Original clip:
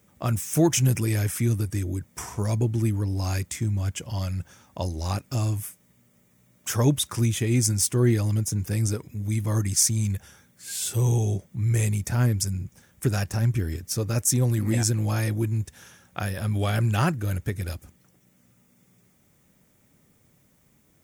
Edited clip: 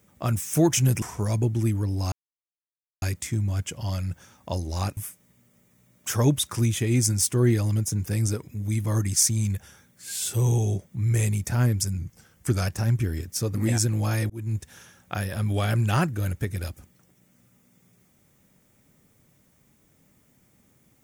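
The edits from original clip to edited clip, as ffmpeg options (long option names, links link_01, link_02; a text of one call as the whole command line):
ffmpeg -i in.wav -filter_complex "[0:a]asplit=8[link_01][link_02][link_03][link_04][link_05][link_06][link_07][link_08];[link_01]atrim=end=1.022[link_09];[link_02]atrim=start=2.208:end=3.31,asetpts=PTS-STARTPTS,afade=type=out:start_time=1.098:duration=0.004:curve=hsin,apad=pad_dur=0.9[link_10];[link_03]atrim=start=3.31:end=5.262,asetpts=PTS-STARTPTS,afade=type=in:duration=0.004:curve=hsin[link_11];[link_04]atrim=start=5.568:end=12.584[link_12];[link_05]atrim=start=12.58:end=13.22,asetpts=PTS-STARTPTS,asetrate=41013,aresample=44100,atrim=end_sample=30348,asetpts=PTS-STARTPTS[link_13];[link_06]atrim=start=13.216:end=14.102[link_14];[link_07]atrim=start=14.598:end=15.35,asetpts=PTS-STARTPTS,afade=type=out:start_time=0.748:duration=0.004:curve=hsin[link_15];[link_08]atrim=start=15.35,asetpts=PTS-STARTPTS,afade=type=in:duration=0.26[link_16];[link_10][link_11]concat=n=2:v=0:a=1[link_17];[link_09][link_17]acrossfade=duration=0.004:curve1=hsin:curve2=hsin[link_18];[link_18][link_12]acrossfade=duration=0.004:curve1=hsin:curve2=hsin[link_19];[link_19][link_13]acrossfade=duration=0.004:curve1=hsin:curve2=hsin[link_20];[link_20][link_14]acrossfade=duration=0.004:curve1=hsin:curve2=hsin[link_21];[link_15][link_16]concat=n=2:v=0:a=1[link_22];[link_21][link_22]acrossfade=duration=0.004:curve1=hsin:curve2=hsin" out.wav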